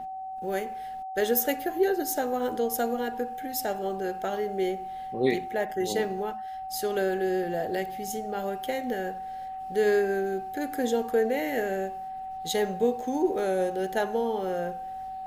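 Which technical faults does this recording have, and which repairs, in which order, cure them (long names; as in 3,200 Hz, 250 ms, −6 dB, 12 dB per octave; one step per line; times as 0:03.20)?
whistle 760 Hz −34 dBFS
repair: notch filter 760 Hz, Q 30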